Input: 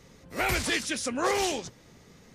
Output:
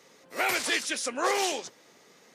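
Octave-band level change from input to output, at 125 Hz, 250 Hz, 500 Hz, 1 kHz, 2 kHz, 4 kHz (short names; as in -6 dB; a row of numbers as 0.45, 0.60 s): under -15 dB, -4.5 dB, -1.0 dB, +1.0 dB, +1.0 dB, +1.0 dB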